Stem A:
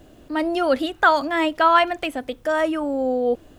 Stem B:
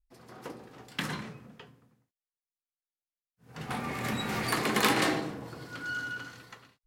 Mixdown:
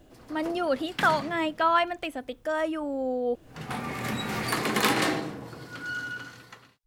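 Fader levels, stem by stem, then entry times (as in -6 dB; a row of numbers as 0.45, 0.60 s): -7.0, +1.5 dB; 0.00, 0.00 s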